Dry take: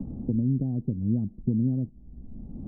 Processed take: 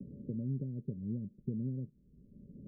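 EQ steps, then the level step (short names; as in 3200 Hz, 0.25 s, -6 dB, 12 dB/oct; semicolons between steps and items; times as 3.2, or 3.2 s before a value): rippled Chebyshev low-pass 590 Hz, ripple 9 dB; tilt +3.5 dB/oct; +1.5 dB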